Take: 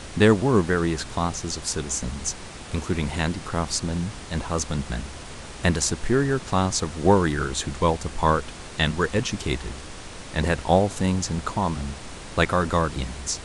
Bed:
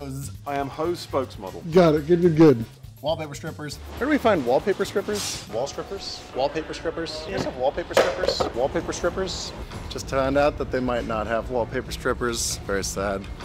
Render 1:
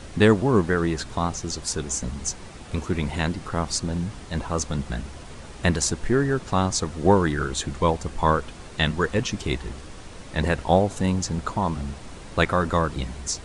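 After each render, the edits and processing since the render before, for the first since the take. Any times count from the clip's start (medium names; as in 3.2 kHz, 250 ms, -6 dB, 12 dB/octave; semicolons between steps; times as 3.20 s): noise reduction 6 dB, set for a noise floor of -39 dBFS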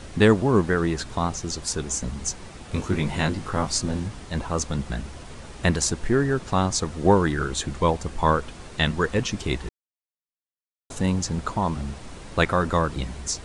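2.72–4.08 s: doubling 20 ms -3.5 dB; 9.69–10.90 s: mute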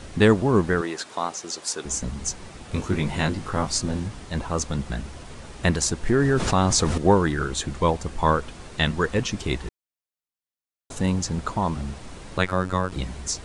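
0.81–1.85 s: high-pass 390 Hz; 6.07–6.98 s: level flattener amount 70%; 12.38–12.92 s: robot voice 92.2 Hz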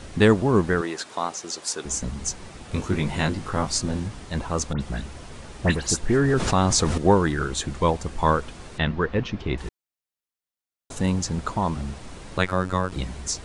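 4.73–6.34 s: phase dispersion highs, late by 79 ms, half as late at 2.7 kHz; 8.78–9.58 s: distance through air 250 m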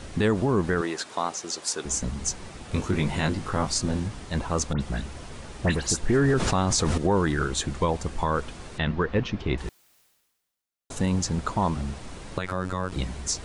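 peak limiter -13.5 dBFS, peak gain reduction 11.5 dB; reverse; upward compressor, threshold -37 dBFS; reverse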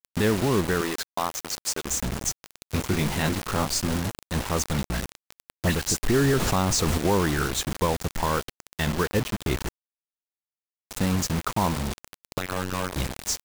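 bit crusher 5-bit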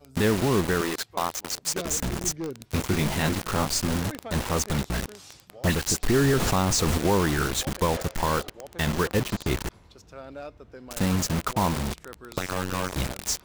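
add bed -19.5 dB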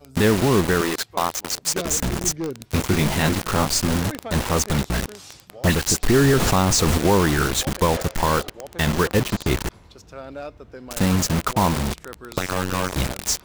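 trim +5 dB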